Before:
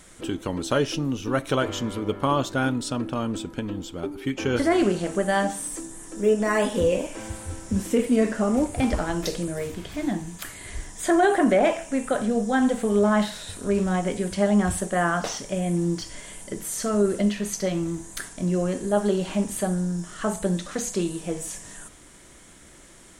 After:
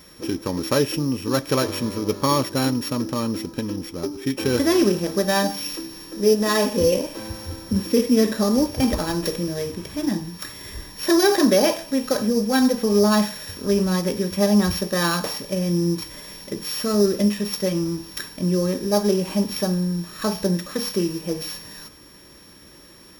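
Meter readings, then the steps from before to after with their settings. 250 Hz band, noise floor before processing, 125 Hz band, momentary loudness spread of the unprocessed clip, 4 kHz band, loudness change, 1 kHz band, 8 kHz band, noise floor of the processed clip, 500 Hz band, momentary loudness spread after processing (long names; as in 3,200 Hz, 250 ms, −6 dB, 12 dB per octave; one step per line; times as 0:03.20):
+3.5 dB, −49 dBFS, +3.0 dB, 12 LU, +8.5 dB, +3.0 dB, 0.0 dB, +2.0 dB, −47 dBFS, +2.5 dB, 12 LU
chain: samples sorted by size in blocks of 8 samples
notch comb filter 710 Hz
level +3.5 dB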